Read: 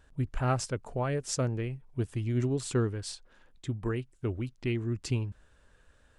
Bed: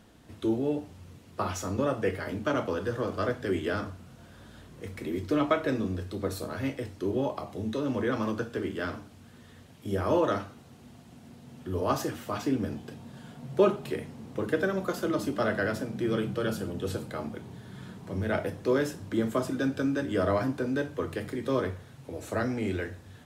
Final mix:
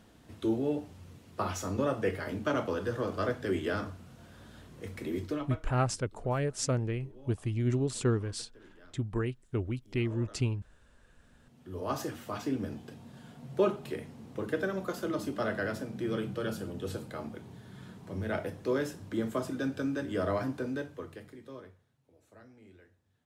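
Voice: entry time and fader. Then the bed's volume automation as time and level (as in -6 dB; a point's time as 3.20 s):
5.30 s, 0.0 dB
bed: 5.23 s -2 dB
5.70 s -25 dB
10.84 s -25 dB
12.00 s -4.5 dB
20.66 s -4.5 dB
22.00 s -26 dB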